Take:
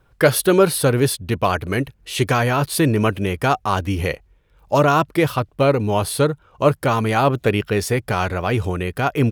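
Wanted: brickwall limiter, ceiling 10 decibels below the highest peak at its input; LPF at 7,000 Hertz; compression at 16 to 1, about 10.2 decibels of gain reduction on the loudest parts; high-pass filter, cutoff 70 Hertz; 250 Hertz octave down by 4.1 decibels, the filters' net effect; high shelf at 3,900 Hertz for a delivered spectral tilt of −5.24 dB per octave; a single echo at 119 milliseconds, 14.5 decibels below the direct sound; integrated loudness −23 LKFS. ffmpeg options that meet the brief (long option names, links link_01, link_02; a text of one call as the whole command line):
ffmpeg -i in.wav -af "highpass=70,lowpass=7000,equalizer=frequency=250:width_type=o:gain=-6,highshelf=frequency=3900:gain=-4,acompressor=threshold=-20dB:ratio=16,alimiter=limit=-20dB:level=0:latency=1,aecho=1:1:119:0.188,volume=8dB" out.wav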